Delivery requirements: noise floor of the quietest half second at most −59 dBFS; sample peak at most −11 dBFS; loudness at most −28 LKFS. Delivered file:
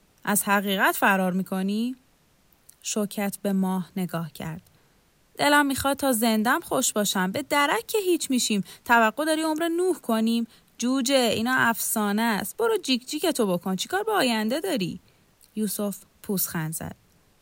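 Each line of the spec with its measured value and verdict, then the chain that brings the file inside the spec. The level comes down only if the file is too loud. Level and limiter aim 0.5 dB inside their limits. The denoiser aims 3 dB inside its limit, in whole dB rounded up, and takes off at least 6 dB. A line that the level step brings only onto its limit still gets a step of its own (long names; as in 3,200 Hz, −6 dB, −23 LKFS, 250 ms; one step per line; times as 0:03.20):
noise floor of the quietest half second −62 dBFS: in spec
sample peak −7.0 dBFS: out of spec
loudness −24.5 LKFS: out of spec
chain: level −4 dB
brickwall limiter −11.5 dBFS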